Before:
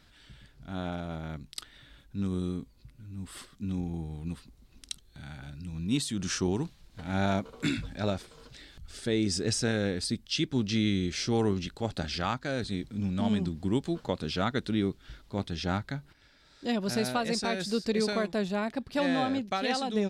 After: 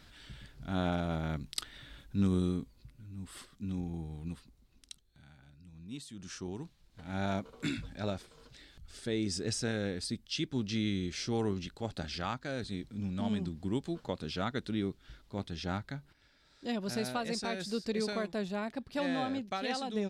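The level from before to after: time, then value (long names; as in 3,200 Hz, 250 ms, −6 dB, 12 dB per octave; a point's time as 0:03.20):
0:02.23 +3 dB
0:03.14 −4 dB
0:04.27 −4 dB
0:05.38 −15.5 dB
0:06.01 −15.5 dB
0:07.34 −5.5 dB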